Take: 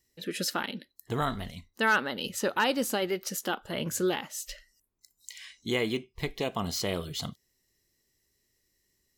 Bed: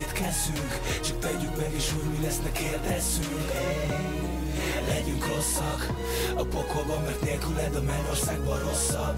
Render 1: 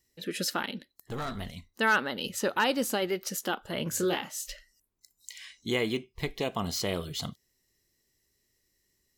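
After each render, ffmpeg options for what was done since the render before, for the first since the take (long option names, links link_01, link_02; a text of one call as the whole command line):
ffmpeg -i in.wav -filter_complex "[0:a]asettb=1/sr,asplit=3[link_01][link_02][link_03];[link_01]atrim=end=0.784[link_04];[link_02]atrim=start=0.78:end=1.36,asetpts=PTS-STARTPTS,afade=type=in:duration=0.004:curve=qsin,afade=type=out:start_time=0.576:duration=0.004:curve=qsin,aeval=exprs='(tanh(31.6*val(0)+0.4)-tanh(0.4))/31.6':channel_layout=same[link_05];[link_03]atrim=start=1.356[link_06];[link_04][link_05]acrossfade=duration=0.004:curve1=hsin:curve2=qsin[link_07];[link_07][link_06]acrossfade=duration=0.004:curve1=qsin:curve2=hsin,asettb=1/sr,asplit=3[link_08][link_09][link_10];[link_08]atrim=end=3.904[link_11];[link_09]atrim=start=3.9:end=4.5,asetpts=PTS-STARTPTS,afade=type=in:duration=0.004:curve=qsin,afade=type=out:start_time=0.596:duration=0.004:curve=qsin,asplit=2[link_12][link_13];[link_13]adelay=29,volume=-6dB[link_14];[link_12][link_14]amix=inputs=2:normalize=0,atrim=end_sample=26460[link_15];[link_10]atrim=start=4.496[link_16];[link_11][link_15]acrossfade=duration=0.004:curve1=hsin:curve2=qsin[link_17];[link_17][link_16]acrossfade=duration=0.004:curve1=qsin:curve2=hsin" out.wav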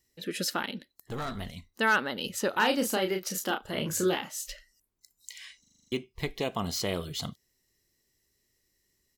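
ffmpeg -i in.wav -filter_complex "[0:a]asplit=3[link_01][link_02][link_03];[link_01]afade=type=out:start_time=2.52:duration=0.02[link_04];[link_02]asplit=2[link_05][link_06];[link_06]adelay=32,volume=-5.5dB[link_07];[link_05][link_07]amix=inputs=2:normalize=0,afade=type=in:start_time=2.52:duration=0.02,afade=type=out:start_time=4.1:duration=0.02[link_08];[link_03]afade=type=in:start_time=4.1:duration=0.02[link_09];[link_04][link_08][link_09]amix=inputs=3:normalize=0,asplit=9[link_10][link_11][link_12][link_13][link_14][link_15][link_16][link_17][link_18];[link_10]atrim=end=5.642[link_19];[link_11]atrim=start=5.598:end=5.642[link_20];[link_12]atrim=start=5.598:end=5.642[link_21];[link_13]atrim=start=5.598:end=5.642[link_22];[link_14]atrim=start=5.598:end=5.642[link_23];[link_15]atrim=start=5.598:end=5.642[link_24];[link_16]atrim=start=5.598:end=5.642[link_25];[link_17]atrim=start=5.598:end=5.642[link_26];[link_18]atrim=start=5.918[link_27];[link_19][link_20]acrossfade=duration=0.004:curve1=hsin:curve2=hsin[link_28];[link_28][link_21]acrossfade=duration=0.004:curve1=hsin:curve2=hsin[link_29];[link_29][link_22]acrossfade=duration=0.004:curve1=hsin:curve2=hsin[link_30];[link_30][link_23]acrossfade=duration=0.004:curve1=hsin:curve2=hsin[link_31];[link_31][link_24]acrossfade=duration=0.004:curve1=hsin:curve2=hsin[link_32];[link_32][link_25]acrossfade=duration=0.004:curve1=hsin:curve2=hsin[link_33];[link_33][link_26]acrossfade=duration=0.004:curve1=hsin:curve2=hsin[link_34];[link_34][link_27]acrossfade=duration=0.004:curve1=hsin:curve2=hsin" out.wav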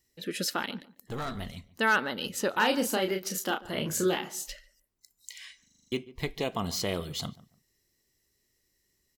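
ffmpeg -i in.wav -filter_complex "[0:a]asplit=2[link_01][link_02];[link_02]adelay=144,lowpass=frequency=1400:poles=1,volume=-18dB,asplit=2[link_03][link_04];[link_04]adelay=144,lowpass=frequency=1400:poles=1,volume=0.24[link_05];[link_01][link_03][link_05]amix=inputs=3:normalize=0" out.wav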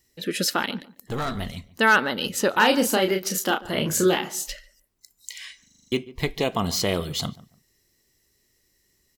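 ffmpeg -i in.wav -af "volume=7dB" out.wav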